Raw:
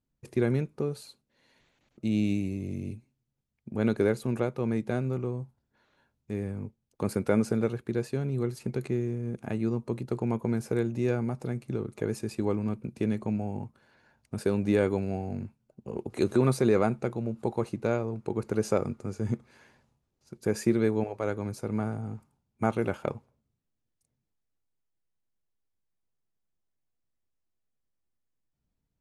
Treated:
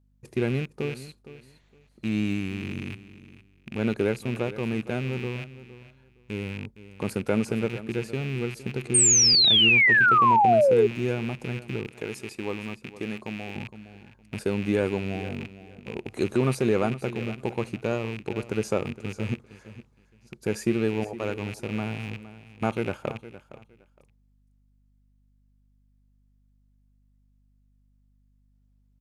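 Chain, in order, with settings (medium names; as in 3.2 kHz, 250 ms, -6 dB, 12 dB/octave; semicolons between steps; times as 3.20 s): rattle on loud lows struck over -38 dBFS, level -27 dBFS; hum 50 Hz, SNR 33 dB; on a send: feedback delay 463 ms, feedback 20%, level -15.5 dB; 8.94–10.87 s: on the sum: painted sound fall 400–8900 Hz -18 dBFS; 11.87–13.56 s: bass shelf 270 Hz -10 dB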